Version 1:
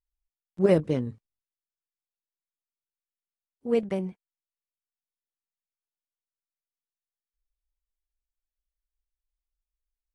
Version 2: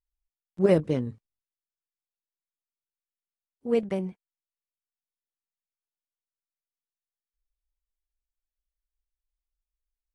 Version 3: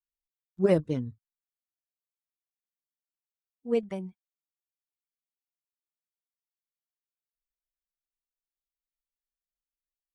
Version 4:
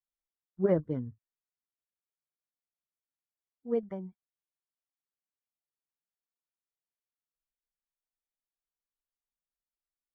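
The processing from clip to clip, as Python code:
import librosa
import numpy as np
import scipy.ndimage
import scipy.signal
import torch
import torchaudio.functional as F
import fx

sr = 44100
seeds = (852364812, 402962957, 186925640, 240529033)

y1 = x
y2 = fx.bin_expand(y1, sr, power=1.5)
y2 = y2 * 10.0 ** (-1.0 / 20.0)
y3 = scipy.signal.savgol_filter(y2, 41, 4, mode='constant')
y3 = y3 * 10.0 ** (-3.5 / 20.0)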